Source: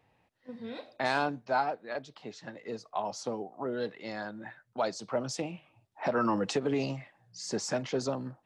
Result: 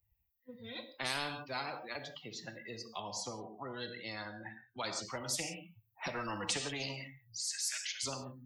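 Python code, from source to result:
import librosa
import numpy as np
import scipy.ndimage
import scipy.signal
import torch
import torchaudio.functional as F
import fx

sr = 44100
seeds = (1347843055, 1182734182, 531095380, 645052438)

y = fx.bin_expand(x, sr, power=2.0)
y = fx.high_shelf(y, sr, hz=5700.0, db=-11.0, at=(3.0, 5.04))
y = fx.steep_highpass(y, sr, hz=1700.0, slope=36, at=(7.48, 8.03), fade=0.02)
y = fx.rev_gated(y, sr, seeds[0], gate_ms=190, shape='falling', drr_db=10.5)
y = fx.spectral_comp(y, sr, ratio=4.0)
y = y * 10.0 ** (1.0 / 20.0)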